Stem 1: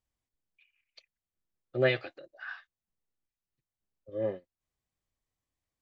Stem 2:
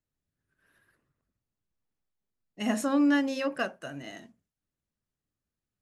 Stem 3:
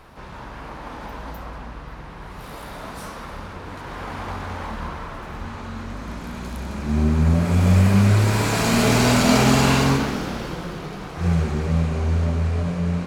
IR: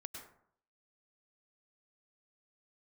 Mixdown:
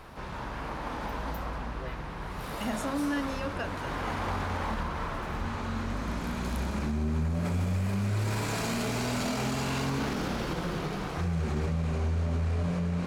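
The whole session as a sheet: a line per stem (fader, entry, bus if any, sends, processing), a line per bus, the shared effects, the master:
−19.0 dB, 0.00 s, no send, no processing
−4.5 dB, 0.00 s, no send, no processing
−0.5 dB, 0.00 s, no send, no processing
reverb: not used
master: brickwall limiter −22.5 dBFS, peak gain reduction 17.5 dB

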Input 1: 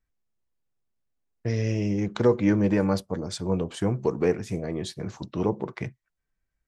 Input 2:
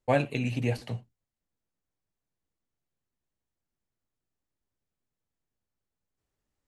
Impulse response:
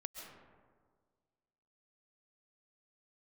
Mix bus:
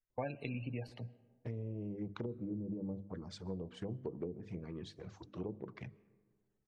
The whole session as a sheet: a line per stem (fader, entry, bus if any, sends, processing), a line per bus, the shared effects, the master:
−11.5 dB, 0.00 s, send −16.5 dB, treble cut that deepens with the level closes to 310 Hz, closed at −18 dBFS; mains-hum notches 50/100/150/200/250/300 Hz; flanger swept by the level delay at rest 8.6 ms, full sweep at −23.5 dBFS
−4.0 dB, 0.10 s, send −21.5 dB, gate on every frequency bin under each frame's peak −25 dB strong; automatic ducking −15 dB, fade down 0.90 s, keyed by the first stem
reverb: on, RT60 1.7 s, pre-delay 95 ms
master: downward compressor 5 to 1, threshold −37 dBFS, peak gain reduction 13 dB

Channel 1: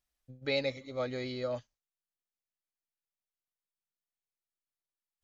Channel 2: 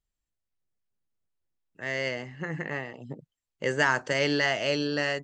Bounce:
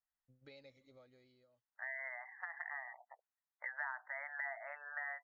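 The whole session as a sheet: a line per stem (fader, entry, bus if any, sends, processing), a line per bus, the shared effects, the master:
−18.5 dB, 0.00 s, no send, downward compressor 5 to 1, threshold −37 dBFS, peak gain reduction 10 dB; automatic ducking −22 dB, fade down 0.95 s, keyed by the second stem
−1.5 dB, 0.00 s, no send, Chebyshev band-pass filter 700–2,000 Hz, order 4; gate on every frequency bin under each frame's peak −20 dB strong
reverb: not used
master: downward compressor 4 to 1, threshold −42 dBFS, peak gain reduction 17 dB

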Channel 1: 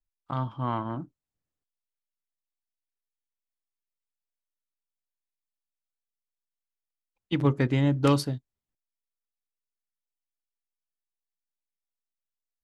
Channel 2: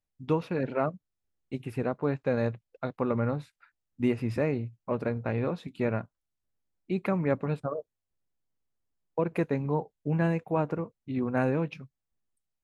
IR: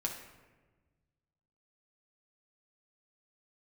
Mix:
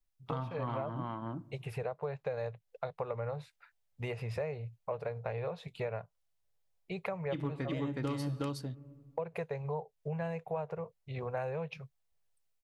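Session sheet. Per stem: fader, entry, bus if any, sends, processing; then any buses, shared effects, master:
+1.5 dB, 0.00 s, send −9.5 dB, echo send −3.5 dB, automatic ducking −7 dB, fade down 1.95 s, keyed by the second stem
−11.5 dB, 0.00 s, no send, no echo send, drawn EQ curve 160 Hz 0 dB, 290 Hz −26 dB, 430 Hz +3 dB, 700 Hz +6 dB, 1,400 Hz −1 dB, 2,000 Hz +2 dB, 3,900 Hz +3 dB, 8,300 Hz 0 dB; automatic gain control gain up to 11 dB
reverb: on, RT60 1.3 s, pre-delay 6 ms
echo: single-tap delay 367 ms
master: downward compressor 4 to 1, threshold −35 dBFS, peak gain reduction 16 dB

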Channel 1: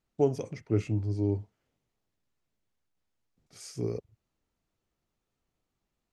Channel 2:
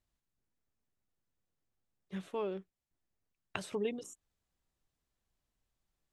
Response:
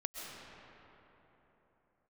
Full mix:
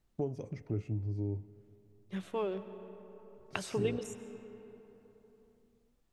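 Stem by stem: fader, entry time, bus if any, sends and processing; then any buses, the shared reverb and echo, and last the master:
−1.0 dB, 0.00 s, send −18.5 dB, spectral tilt −2 dB per octave; downward compressor 2.5 to 1, threshold −38 dBFS, peak gain reduction 14.5 dB
0.0 dB, 0.00 s, send −8 dB, no processing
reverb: on, RT60 3.8 s, pre-delay 90 ms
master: no processing

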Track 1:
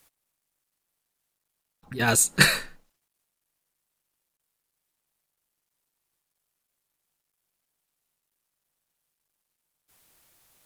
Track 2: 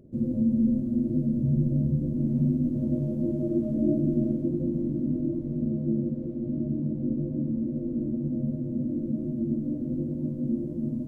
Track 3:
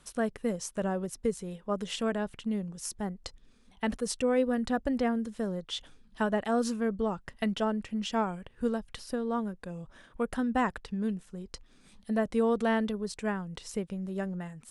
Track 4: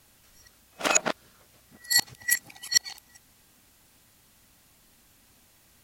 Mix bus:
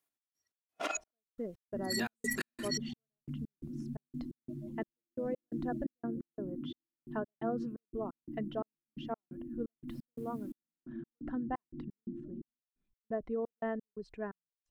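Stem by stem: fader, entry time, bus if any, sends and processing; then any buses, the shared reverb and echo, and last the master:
−5.0 dB, 0.00 s, bus A, no send, parametric band 5,200 Hz −4.5 dB 1.9 octaves; downward compressor, threshold −27 dBFS, peak gain reduction 13.5 dB
−14.0 dB, 1.55 s, no bus, no send, gate on every frequency bin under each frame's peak −15 dB strong
−8.0 dB, 0.95 s, no bus, no send, spectral envelope exaggerated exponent 1.5; Bessel low-pass filter 1,800 Hz, order 2
+1.5 dB, 0.00 s, bus A, no send, downward compressor 6 to 1, threshold −31 dBFS, peak gain reduction 16 dB; every bin expanded away from the loudest bin 1.5 to 1
bus A: 0.0 dB, high-pass filter 190 Hz 12 dB per octave; brickwall limiter −24.5 dBFS, peak gain reduction 7.5 dB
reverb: not used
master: noise gate −55 dBFS, range −17 dB; comb filter 2.9 ms, depth 31%; gate pattern "x.x.xx..x.x" 87 BPM −60 dB

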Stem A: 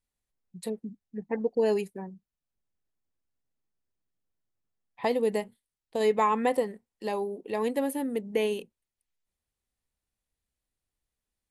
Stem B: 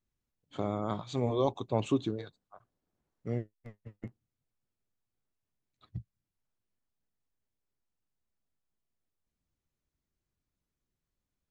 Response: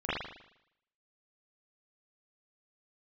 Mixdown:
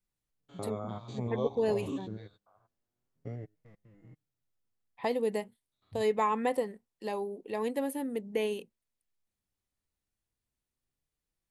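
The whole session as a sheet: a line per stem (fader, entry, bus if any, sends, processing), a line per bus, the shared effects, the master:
−4.0 dB, 0.00 s, no send, no processing
−1.0 dB, 0.00 s, no send, spectrum averaged block by block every 100 ms; flanger 0.26 Hz, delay 5.7 ms, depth 5.3 ms, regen +19%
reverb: not used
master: no processing

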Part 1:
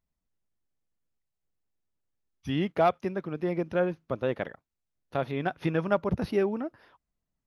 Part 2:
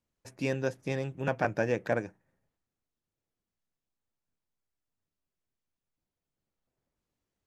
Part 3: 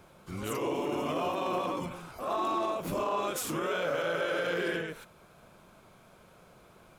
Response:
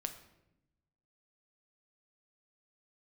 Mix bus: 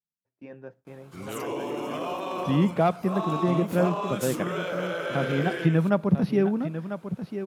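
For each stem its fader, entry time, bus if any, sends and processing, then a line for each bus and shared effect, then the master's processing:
−2.5 dB, 0.00 s, send −12 dB, echo send −8.5 dB, parametric band 170 Hz +11 dB 1.4 octaves
−8.0 dB, 0.00 s, send −19.5 dB, no echo send, low-pass filter 1,700 Hz 12 dB per octave; flanger 0.38 Hz, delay 0.1 ms, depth 9.9 ms, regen −65%
0.0 dB, 0.85 s, no send, no echo send, no processing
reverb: on, RT60 0.85 s, pre-delay 6 ms
echo: single-tap delay 996 ms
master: noise gate with hold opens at −44 dBFS; high-pass filter 120 Hz

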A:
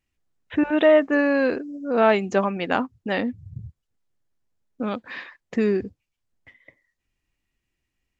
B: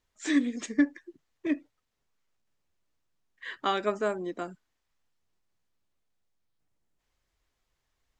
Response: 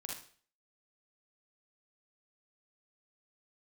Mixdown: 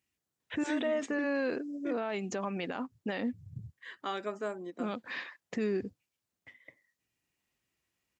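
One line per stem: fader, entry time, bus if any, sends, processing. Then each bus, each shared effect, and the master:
−4.5 dB, 0.00 s, no send, downward compressor, threshold −22 dBFS, peak gain reduction 10.5 dB
−7.0 dB, 0.40 s, no send, high-shelf EQ 4,100 Hz −7 dB; every ending faded ahead of time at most 590 dB per second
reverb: not used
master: high-pass filter 110 Hz 12 dB per octave; high-shelf EQ 5,000 Hz +7.5 dB; brickwall limiter −24 dBFS, peak gain reduction 11 dB

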